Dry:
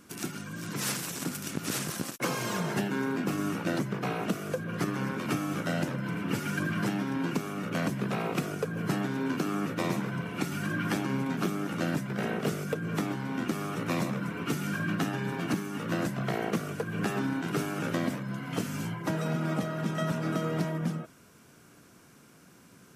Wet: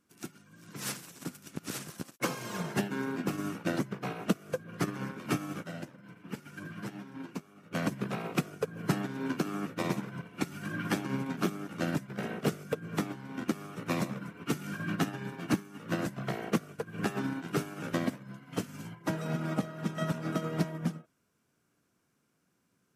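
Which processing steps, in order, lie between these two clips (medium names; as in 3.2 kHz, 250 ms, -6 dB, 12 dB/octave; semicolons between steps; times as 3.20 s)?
5.64–7.73 s: flange 1.4 Hz, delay 4.4 ms, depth 7.7 ms, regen -36%; upward expansion 2.5:1, over -40 dBFS; trim +3.5 dB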